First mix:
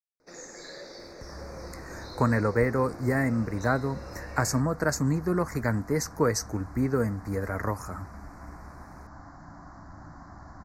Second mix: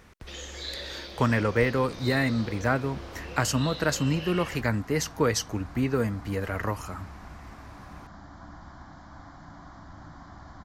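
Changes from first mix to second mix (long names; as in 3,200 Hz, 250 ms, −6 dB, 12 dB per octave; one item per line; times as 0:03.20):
speech: entry −1.00 s
master: remove Butterworth band-reject 3,100 Hz, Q 0.99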